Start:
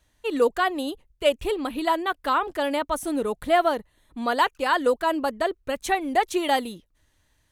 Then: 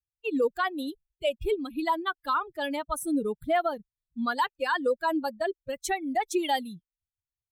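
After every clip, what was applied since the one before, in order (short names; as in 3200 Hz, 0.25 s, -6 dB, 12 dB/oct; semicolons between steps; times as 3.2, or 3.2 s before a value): per-bin expansion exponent 2; limiter -20 dBFS, peak gain reduction 9 dB; gain +2.5 dB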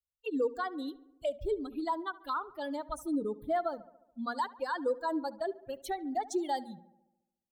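envelope phaser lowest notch 290 Hz, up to 2600 Hz, full sweep at -27.5 dBFS; notches 60/120/180/240 Hz; darkening echo 71 ms, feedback 63%, low-pass 2200 Hz, level -18.5 dB; gain -4.5 dB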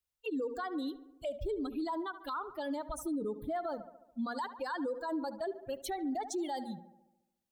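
limiter -33.5 dBFS, peak gain reduction 11.5 dB; gain +4 dB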